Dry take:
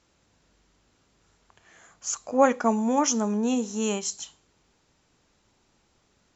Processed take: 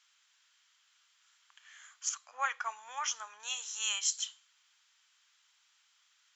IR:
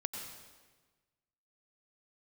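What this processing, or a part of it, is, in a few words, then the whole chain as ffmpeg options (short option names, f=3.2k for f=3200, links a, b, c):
headphones lying on a table: -filter_complex "[0:a]asettb=1/sr,asplit=3[a][b][c];[a]atrim=end=2.094[d];[b]atrim=start=2.09:end=3.4,asetpts=PTS-STARTPTS,afade=t=in:d=0.004:c=qsin,afade=t=out:st=1.306:d=0.004:c=qsin,aemphasis=mode=reproduction:type=75kf[e];[c]atrim=start=3.396[f];[d][e]acrossfade=d=0.004:c1=hsin:c2=qsin[g];[g][f]acrossfade=d=0.004:c1=qsin:c2=hsin,highpass=f=1.3k:w=0.5412,highpass=f=1.3k:w=1.3066,equalizer=f=3.2k:t=o:w=0.23:g=7"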